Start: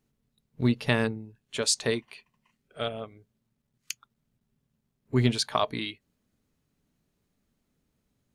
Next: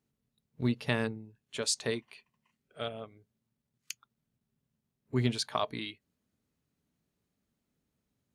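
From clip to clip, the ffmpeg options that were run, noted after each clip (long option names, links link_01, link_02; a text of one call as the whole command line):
ffmpeg -i in.wav -af "highpass=52,volume=-5.5dB" out.wav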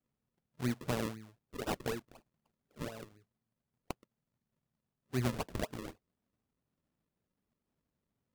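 ffmpeg -i in.wav -af "acrusher=samples=40:mix=1:aa=0.000001:lfo=1:lforange=40:lforate=4,volume=-4.5dB" out.wav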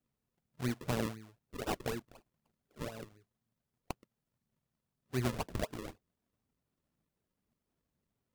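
ffmpeg -i in.wav -af "aphaser=in_gain=1:out_gain=1:delay=3.1:decay=0.25:speed=2:type=triangular" out.wav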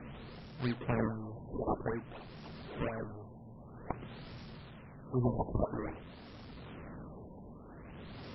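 ffmpeg -i in.wav -af "aeval=exprs='val(0)+0.5*0.0075*sgn(val(0))':channel_layout=same,tremolo=f=0.72:d=0.37,afftfilt=real='re*lt(b*sr/1024,1000*pow(5700/1000,0.5+0.5*sin(2*PI*0.51*pts/sr)))':imag='im*lt(b*sr/1024,1000*pow(5700/1000,0.5+0.5*sin(2*PI*0.51*pts/sr)))':win_size=1024:overlap=0.75,volume=3.5dB" out.wav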